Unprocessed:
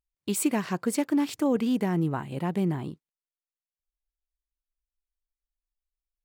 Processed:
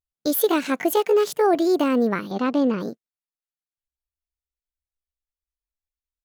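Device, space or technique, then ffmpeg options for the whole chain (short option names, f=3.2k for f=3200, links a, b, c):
chipmunk voice: -filter_complex "[0:a]asetrate=64194,aresample=44100,atempo=0.686977,agate=range=-11dB:threshold=-38dB:ratio=16:detection=peak,asettb=1/sr,asplit=3[a][b][c];[a]atrim=end=2.314[d];[b]atrim=start=2.31:end=2.8,asetpts=PTS-STARTPTS,afade=t=in:d=0.004:c=qsin,afade=t=out:st=0.486:d=0.004:c=qsin,lowpass=6.2k[e];[c]atrim=start=2.796[f];[d][e]acrossfade=d=0.004:c1=hsin:c2=qsin[g];[g][f]acrossfade=d=0.004:c1=qsin:c2=hsin,volume=6dB"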